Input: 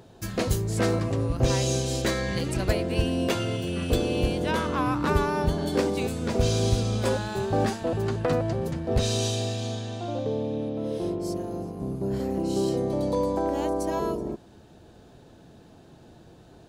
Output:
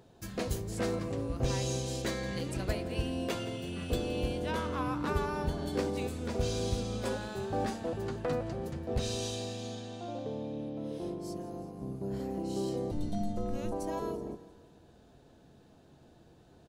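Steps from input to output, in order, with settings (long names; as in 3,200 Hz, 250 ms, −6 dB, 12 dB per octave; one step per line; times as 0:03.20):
0:12.91–0:13.72: frequency shifter −290 Hz
repeating echo 170 ms, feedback 53%, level −17 dB
convolution reverb RT60 0.35 s, pre-delay 4 ms, DRR 13 dB
level −8.5 dB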